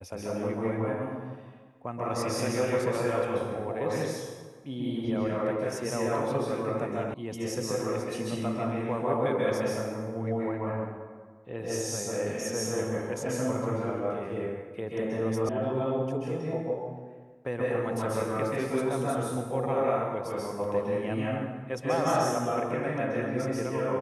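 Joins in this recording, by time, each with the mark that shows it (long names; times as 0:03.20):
0:07.14: cut off before it has died away
0:15.49: cut off before it has died away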